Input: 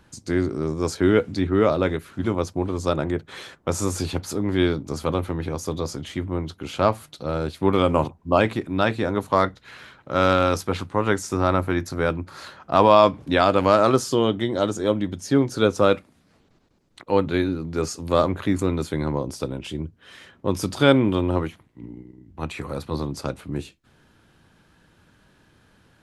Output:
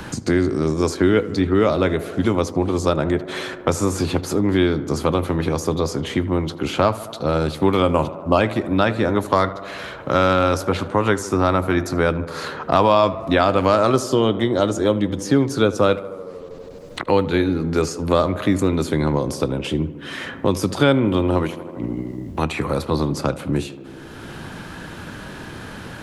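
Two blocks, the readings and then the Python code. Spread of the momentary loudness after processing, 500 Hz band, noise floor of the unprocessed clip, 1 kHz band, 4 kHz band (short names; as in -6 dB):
17 LU, +2.5 dB, -60 dBFS, +2.0 dB, +3.0 dB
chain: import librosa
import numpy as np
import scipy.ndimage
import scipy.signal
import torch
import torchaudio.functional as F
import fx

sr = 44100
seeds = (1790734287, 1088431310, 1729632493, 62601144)

p1 = x + fx.echo_tape(x, sr, ms=77, feedback_pct=78, wet_db=-15.0, lp_hz=1900.0, drive_db=4.0, wow_cents=35, dry=0)
p2 = fx.band_squash(p1, sr, depth_pct=70)
y = p2 * 10.0 ** (3.0 / 20.0)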